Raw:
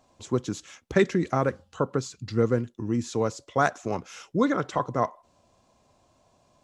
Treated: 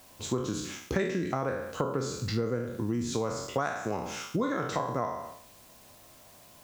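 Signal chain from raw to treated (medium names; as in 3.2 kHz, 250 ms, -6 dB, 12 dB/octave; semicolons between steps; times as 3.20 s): spectral sustain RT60 0.60 s; in parallel at -8.5 dB: word length cut 8-bit, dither triangular; on the sum: compression 6:1, threshold -27 dBFS, peak gain reduction 15 dB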